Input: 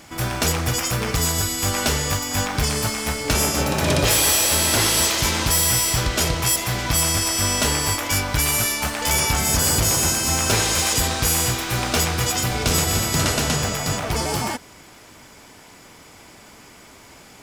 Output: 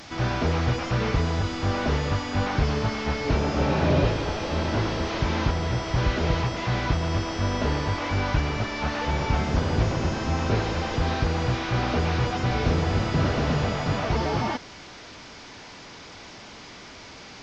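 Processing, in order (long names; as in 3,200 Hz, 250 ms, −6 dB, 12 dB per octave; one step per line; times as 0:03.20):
linear delta modulator 32 kbit/s, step −37 dBFS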